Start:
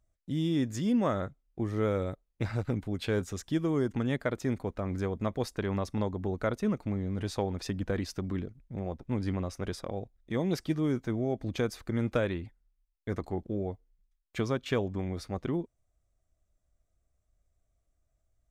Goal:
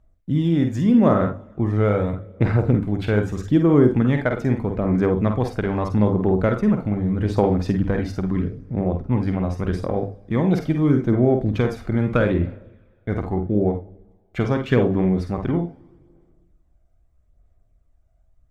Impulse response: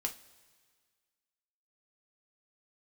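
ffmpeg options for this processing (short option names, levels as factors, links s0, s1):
-filter_complex "[0:a]asplit=2[s0][s1];[s1]adynamicsmooth=sensitivity=3:basefreq=2200,volume=0.891[s2];[s0][s2]amix=inputs=2:normalize=0,bandreject=f=50:t=h:w=6,bandreject=f=100:t=h:w=6,asplit=2[s3][s4];[1:a]atrim=start_sample=2205,adelay=48[s5];[s4][s5]afir=irnorm=-1:irlink=0,volume=0.501[s6];[s3][s6]amix=inputs=2:normalize=0,aphaser=in_gain=1:out_gain=1:delay=1.4:decay=0.34:speed=0.8:type=sinusoidal,bass=f=250:g=2,treble=f=4000:g=-8,volume=1.5"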